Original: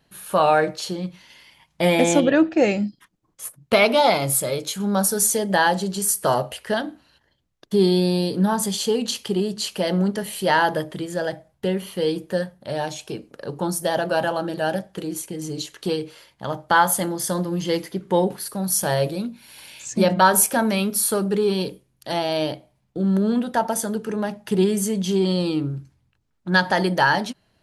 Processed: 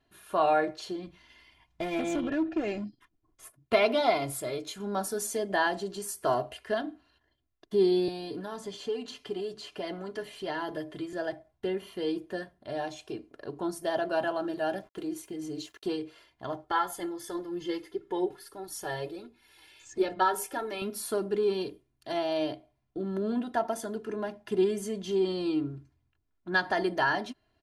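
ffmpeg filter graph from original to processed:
ffmpeg -i in.wav -filter_complex "[0:a]asettb=1/sr,asplit=3[link_01][link_02][link_03];[link_01]atrim=end=1.074[link_04];[link_02]atrim=start=1.07:end=3.45,asetpts=PTS-STARTPTS,afade=type=in:duration=0.004:curve=qsin,afade=type=out:start_time=2.376:duration=0.004:curve=qsin,lowshelf=frequency=120:gain=9,acompressor=threshold=-19dB:ratio=3:attack=3.2:release=140:knee=1:detection=peak,volume=18.5dB,asoftclip=hard,volume=-18.5dB[link_05];[link_03]atrim=start=3.446[link_06];[link_04][link_05]acrossfade=duration=0.004:curve1=hsin:curve2=qsin[link_07];[link_07][link_06]acrossfade=duration=0.004:curve1=qsin:curve2=hsin,asettb=1/sr,asplit=3[link_08][link_09][link_10];[link_08]atrim=end=8.084[link_11];[link_09]atrim=start=8.08:end=11.13,asetpts=PTS-STARTPTS,afade=type=in:duration=0.004:curve=qsin,afade=type=out:start_time=3.046:duration=0.004:curve=qsin,aecho=1:1:6.9:0.45,atrim=end_sample=134505,acrossover=split=600|2400|7000[link_12][link_13][link_14][link_15];[link_12]acompressor=threshold=-27dB:ratio=3[link_16];[link_13]acompressor=threshold=-31dB:ratio=3[link_17];[link_14]acompressor=threshold=-37dB:ratio=3[link_18];[link_15]acompressor=threshold=-49dB:ratio=3[link_19];[link_16][link_17][link_18][link_19]amix=inputs=4:normalize=0[link_20];[link_10]atrim=start=11.126[link_21];[link_11][link_20]acrossfade=duration=0.004:curve1=hsin:curve2=qsin[link_22];[link_22][link_21]acrossfade=duration=0.004:curve1=qsin:curve2=hsin,asettb=1/sr,asplit=3[link_23][link_24][link_25];[link_23]atrim=end=14.424[link_26];[link_24]atrim=start=14.42:end=15.88,asetpts=PTS-STARTPTS,afade=type=in:duration=0.004:curve=qsin,afade=type=out:start_time=1.456:duration=0.004:curve=qsin,highshelf=frequency=11000:gain=4.5,aeval=exprs='val(0)*gte(abs(val(0)),0.00376)':channel_layout=same[link_27];[link_25]atrim=start=15.876[link_28];[link_26][link_27]acrossfade=duration=0.004:curve1=hsin:curve2=qsin[link_29];[link_29][link_28]acrossfade=duration=0.004:curve1=qsin:curve2=hsin,asettb=1/sr,asplit=3[link_30][link_31][link_32];[link_30]atrim=end=16.644[link_33];[link_31]atrim=start=16.64:end=20.82,asetpts=PTS-STARTPTS,afade=type=in:duration=0.004:curve=qsin,afade=type=out:start_time=4.176:duration=0.004:curve=qsin,aecho=1:1:2.3:0.62,atrim=end_sample=184338,flanger=delay=2.3:depth=4.2:regen=56:speed=1.5:shape=triangular[link_34];[link_32]atrim=start=20.816[link_35];[link_33][link_34]acrossfade=duration=0.004:curve1=hsin:curve2=qsin[link_36];[link_36][link_35]acrossfade=duration=0.004:curve1=qsin:curve2=hsin,lowpass=frequency=3000:poles=1,aecho=1:1:2.9:0.67,volume=-8.5dB" out.wav

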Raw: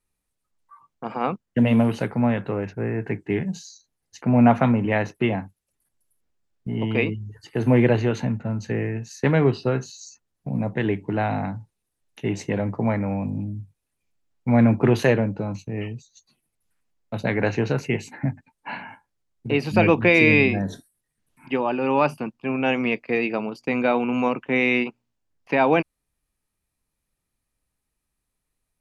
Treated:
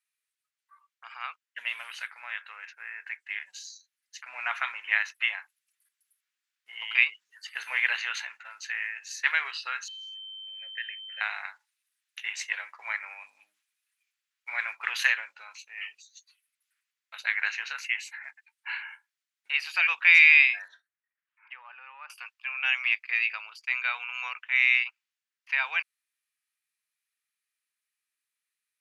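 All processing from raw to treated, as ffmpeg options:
ffmpeg -i in.wav -filter_complex "[0:a]asettb=1/sr,asplit=3[link_01][link_02][link_03];[link_01]atrim=end=9.884[link_04];[link_02]atrim=start=9.88:end=11.21,asetpts=PTS-STARTPTS,afade=type=in:duration=0.004:curve=qsin,afade=type=out:start_time=1.326:duration=0.004:curve=qsin,asplit=3[link_05][link_06][link_07];[link_05]bandpass=frequency=530:width_type=q:width=8,volume=0dB[link_08];[link_06]bandpass=frequency=1840:width_type=q:width=8,volume=-6dB[link_09];[link_07]bandpass=frequency=2480:width_type=q:width=8,volume=-9dB[link_10];[link_08][link_09][link_10]amix=inputs=3:normalize=0,lowshelf=frequency=250:gain=-5.5,aeval=exprs='val(0)+0.00562*sin(2*PI*3100*n/s)':channel_layout=same[link_11];[link_03]atrim=start=11.206[link_12];[link_04][link_11]acrossfade=duration=0.004:curve1=hsin:curve2=qsin[link_13];[link_13][link_12]acrossfade=duration=0.004:curve1=qsin:curve2=hsin,asettb=1/sr,asplit=3[link_14][link_15][link_16];[link_14]atrim=end=20.684[link_17];[link_15]atrim=start=20.68:end=22.1,asetpts=PTS-STARTPTS,afade=type=in:duration=0.004:curve=qsin,afade=type=out:start_time=1.416:duration=0.004:curve=qsin,lowpass=1500,acompressor=threshold=-28dB:ratio=5:attack=3.2:release=140:knee=1:detection=peak[link_18];[link_16]atrim=start=22.096[link_19];[link_17][link_18]acrossfade=duration=0.004:curve1=hsin:curve2=qsin[link_20];[link_20][link_19]acrossfade=duration=0.004:curve1=qsin:curve2=hsin,highpass=frequency=1400:width=0.5412,highpass=frequency=1400:width=1.3066,equalizer=frequency=2300:width_type=o:width=2.1:gain=5.5,dynaudnorm=framelen=300:gausssize=31:maxgain=11.5dB,volume=-5dB" out.wav

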